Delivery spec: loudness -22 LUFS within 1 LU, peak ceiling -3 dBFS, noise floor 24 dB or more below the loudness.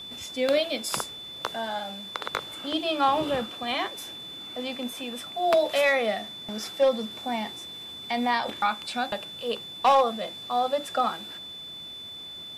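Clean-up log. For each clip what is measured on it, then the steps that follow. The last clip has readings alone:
clipped samples 0.2%; clipping level -14.5 dBFS; steady tone 3.5 kHz; tone level -38 dBFS; loudness -28.0 LUFS; peak level -14.5 dBFS; loudness target -22.0 LUFS
-> clip repair -14.5 dBFS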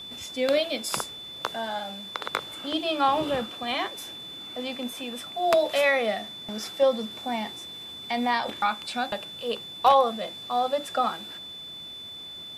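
clipped samples 0.0%; steady tone 3.5 kHz; tone level -38 dBFS
-> band-stop 3.5 kHz, Q 30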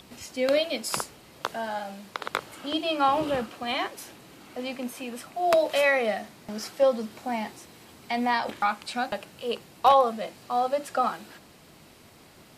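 steady tone not found; loudness -27.5 LUFS; peak level -6.0 dBFS; loudness target -22.0 LUFS
-> trim +5.5 dB; peak limiter -3 dBFS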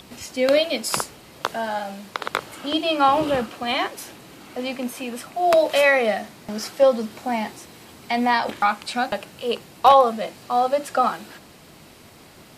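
loudness -22.0 LUFS; peak level -3.0 dBFS; noise floor -47 dBFS

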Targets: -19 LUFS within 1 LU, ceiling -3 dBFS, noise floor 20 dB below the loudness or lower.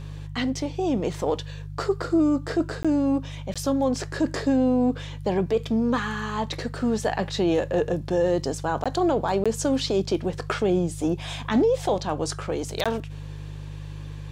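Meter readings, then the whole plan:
dropouts 5; longest dropout 16 ms; hum 50 Hz; highest harmonic 150 Hz; hum level -34 dBFS; loudness -25.0 LUFS; peak level -12.5 dBFS; loudness target -19.0 LUFS
-> interpolate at 2.83/3.54/8.84/9.44/12.84 s, 16 ms; de-hum 50 Hz, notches 3; trim +6 dB

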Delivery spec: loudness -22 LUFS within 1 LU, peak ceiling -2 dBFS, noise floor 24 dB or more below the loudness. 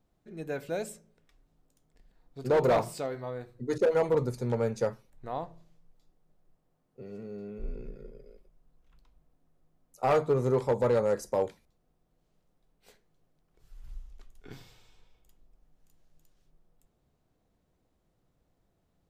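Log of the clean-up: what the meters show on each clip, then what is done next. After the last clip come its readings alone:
clipped samples 0.5%; clipping level -19.0 dBFS; loudness -30.0 LUFS; peak level -19.0 dBFS; loudness target -22.0 LUFS
-> clip repair -19 dBFS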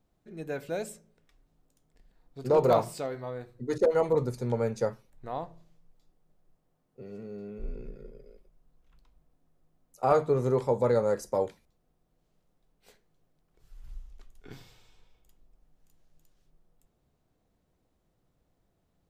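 clipped samples 0.0%; loudness -29.0 LUFS; peak level -10.0 dBFS; loudness target -22.0 LUFS
-> trim +7 dB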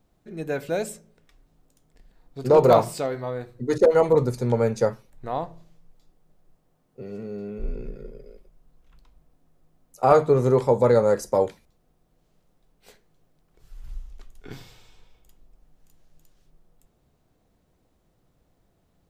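loudness -22.5 LUFS; peak level -3.0 dBFS; noise floor -68 dBFS

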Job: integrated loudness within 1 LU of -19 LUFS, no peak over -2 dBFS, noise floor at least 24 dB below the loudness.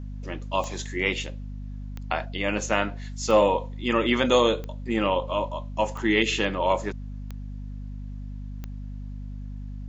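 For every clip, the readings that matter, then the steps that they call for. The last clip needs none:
clicks found 7; hum 50 Hz; highest harmonic 250 Hz; hum level -33 dBFS; loudness -25.5 LUFS; peak level -6.5 dBFS; loudness target -19.0 LUFS
-> de-click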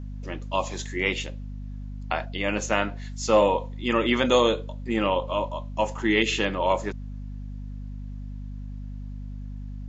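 clicks found 0; hum 50 Hz; highest harmonic 250 Hz; hum level -33 dBFS
-> de-hum 50 Hz, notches 5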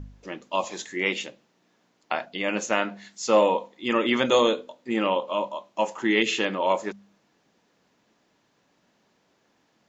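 hum not found; loudness -25.5 LUFS; peak level -6.5 dBFS; loudness target -19.0 LUFS
-> trim +6.5 dB; peak limiter -2 dBFS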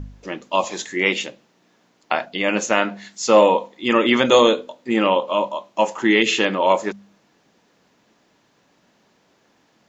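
loudness -19.0 LUFS; peak level -2.0 dBFS; noise floor -62 dBFS

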